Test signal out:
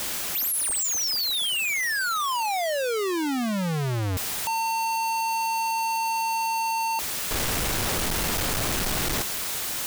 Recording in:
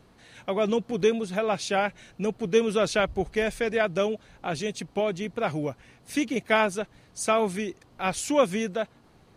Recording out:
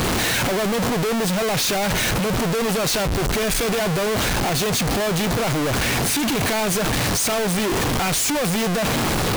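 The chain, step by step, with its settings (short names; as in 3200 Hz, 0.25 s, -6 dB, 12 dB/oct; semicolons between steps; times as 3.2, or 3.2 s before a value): infinite clipping; gain +6.5 dB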